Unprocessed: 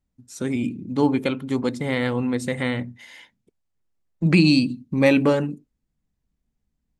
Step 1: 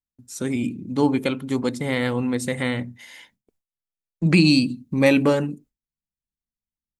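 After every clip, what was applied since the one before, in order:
noise gate with hold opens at −48 dBFS
high-shelf EQ 7,500 Hz +9 dB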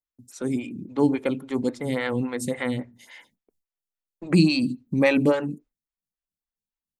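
phaser with staggered stages 3.6 Hz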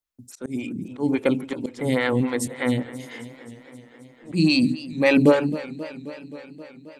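volume swells 205 ms
feedback echo with a swinging delay time 265 ms, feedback 74%, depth 111 cents, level −17 dB
level +4.5 dB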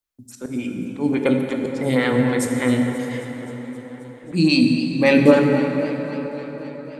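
dense smooth reverb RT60 4.6 s, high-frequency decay 0.5×, DRR 2.5 dB
level +1.5 dB

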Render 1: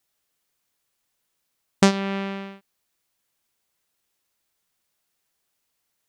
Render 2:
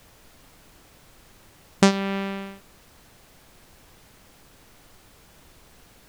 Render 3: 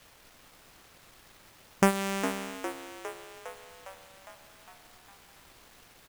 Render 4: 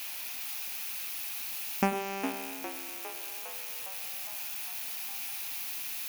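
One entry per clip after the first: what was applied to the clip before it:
background noise pink −53 dBFS
gap after every zero crossing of 0.096 ms; low-shelf EQ 460 Hz −8.5 dB; on a send: echo with shifted repeats 407 ms, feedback 64%, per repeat +75 Hz, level −10 dB
spike at every zero crossing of −23 dBFS; thirty-one-band graphic EQ 250 Hz +12 dB, 800 Hz +8 dB, 2,500 Hz +9 dB, 8,000 Hz −9 dB; convolution reverb RT60 0.30 s, pre-delay 86 ms, DRR 12.5 dB; level −8 dB

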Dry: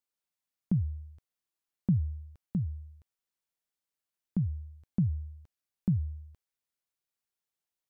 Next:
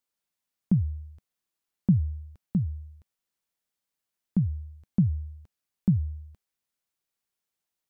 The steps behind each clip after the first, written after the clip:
parametric band 200 Hz +3 dB 0.44 octaves
level +3.5 dB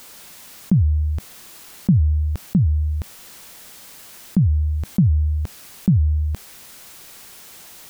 envelope flattener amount 70%
level +4 dB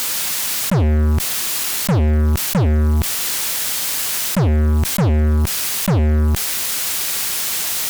tilt shelving filter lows −4.5 dB, about 1,100 Hz
fuzz pedal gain 35 dB, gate −44 dBFS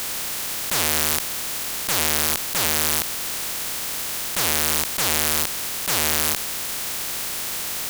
compressing power law on the bin magnitudes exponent 0.13
level −6.5 dB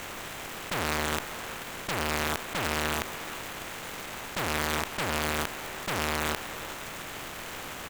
running median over 9 samples
far-end echo of a speakerphone 390 ms, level −12 dB
level −1.5 dB

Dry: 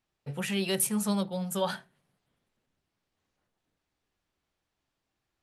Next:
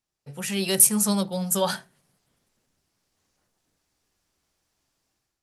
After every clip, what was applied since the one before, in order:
automatic gain control gain up to 11 dB
flat-topped bell 7,700 Hz +8.5 dB
level −5.5 dB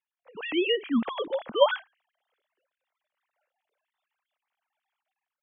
three sine waves on the formant tracks
level −3 dB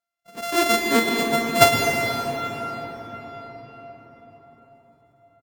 samples sorted by size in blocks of 64 samples
double-tracking delay 45 ms −12 dB
on a send at −1 dB: convolution reverb RT60 5.3 s, pre-delay 107 ms
on the sum: level +4.5 dB

